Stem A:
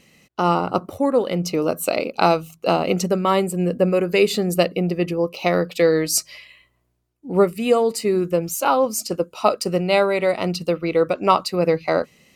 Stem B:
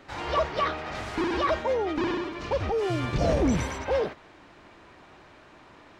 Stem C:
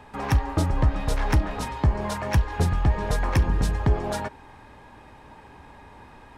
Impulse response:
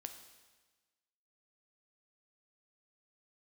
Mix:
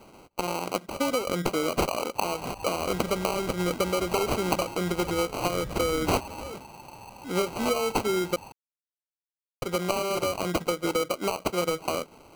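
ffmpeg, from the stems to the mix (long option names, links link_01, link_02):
-filter_complex "[0:a]aemphasis=mode=production:type=bsi,acompressor=threshold=-21dB:ratio=16,volume=-0.5dB,asplit=3[link_01][link_02][link_03];[link_01]atrim=end=8.36,asetpts=PTS-STARTPTS,afade=type=out:start_time=8.356:duration=0.004:curve=hsin[link_04];[link_02]atrim=start=8.36:end=9.62,asetpts=PTS-STARTPTS,volume=0[link_05];[link_03]atrim=start=9.62,asetpts=PTS-STARTPTS,afade=type=in:duration=0.004:curve=hsin[link_06];[link_04][link_05][link_06]concat=n=3:v=0:a=1[link_07];[1:a]adelay=2500,volume=-5dB[link_08];[2:a]asoftclip=type=tanh:threshold=-27.5dB,lowshelf=frequency=560:width_type=q:width=3:gain=-13,crystalizer=i=9.5:c=0,adelay=2150,volume=-4dB[link_09];[link_08][link_09]amix=inputs=2:normalize=0,acrossover=split=240[link_10][link_11];[link_11]acompressor=threshold=-43dB:ratio=2[link_12];[link_10][link_12]amix=inputs=2:normalize=0,alimiter=level_in=5.5dB:limit=-24dB:level=0:latency=1:release=119,volume=-5.5dB,volume=0dB[link_13];[link_07][link_13]amix=inputs=2:normalize=0,acrossover=split=470|3000[link_14][link_15][link_16];[link_15]acompressor=threshold=-27dB:ratio=6[link_17];[link_14][link_17][link_16]amix=inputs=3:normalize=0,acrusher=samples=25:mix=1:aa=0.000001"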